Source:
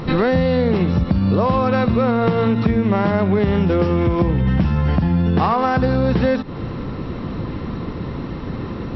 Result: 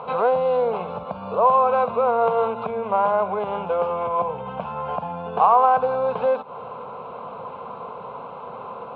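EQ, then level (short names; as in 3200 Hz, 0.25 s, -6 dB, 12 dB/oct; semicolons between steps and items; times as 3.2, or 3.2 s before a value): air absorption 96 m; speaker cabinet 440–2900 Hz, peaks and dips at 470 Hz +6 dB, 720 Hz +4 dB, 1000 Hz +7 dB, 1500 Hz +5 dB, 2400 Hz +4 dB; fixed phaser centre 770 Hz, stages 4; 0.0 dB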